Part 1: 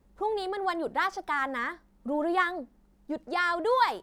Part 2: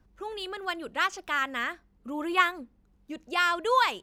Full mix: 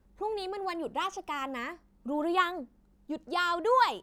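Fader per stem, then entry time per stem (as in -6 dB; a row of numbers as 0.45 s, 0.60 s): -4.5 dB, -7.0 dB; 0.00 s, 0.00 s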